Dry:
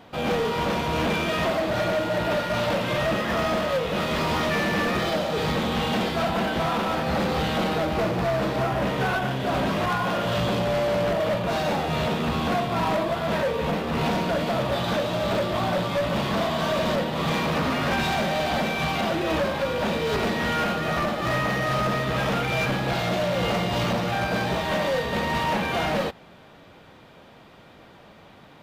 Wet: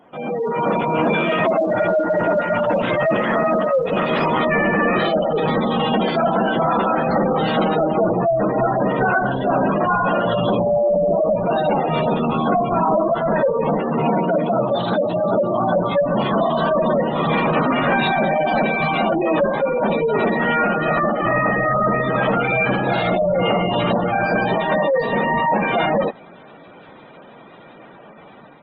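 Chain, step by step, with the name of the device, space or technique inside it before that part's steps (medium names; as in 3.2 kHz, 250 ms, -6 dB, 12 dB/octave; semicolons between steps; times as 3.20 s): noise-suppressed video call (high-pass 170 Hz 12 dB/octave; spectral gate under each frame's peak -15 dB strong; level rider gain up to 8 dB; Opus 16 kbps 48 kHz)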